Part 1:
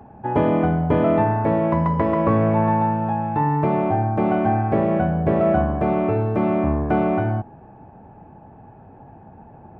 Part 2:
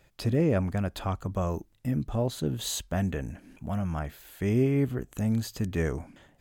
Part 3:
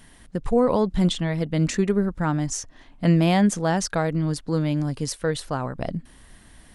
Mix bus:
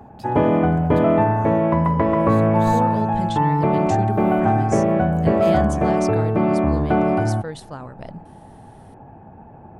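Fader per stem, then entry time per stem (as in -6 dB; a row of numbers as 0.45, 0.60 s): +1.5, -10.0, -7.5 dB; 0.00, 0.00, 2.20 s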